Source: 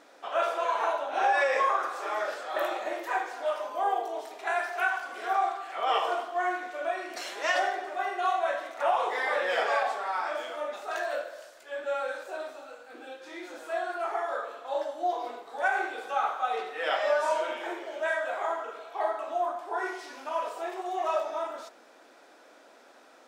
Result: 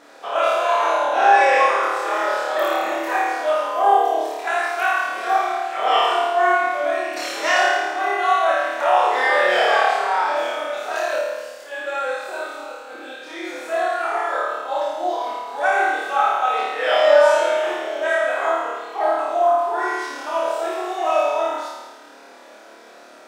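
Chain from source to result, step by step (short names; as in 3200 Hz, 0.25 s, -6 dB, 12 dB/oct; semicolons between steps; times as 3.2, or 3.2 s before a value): flutter echo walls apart 4.7 m, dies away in 1.2 s; gain +5.5 dB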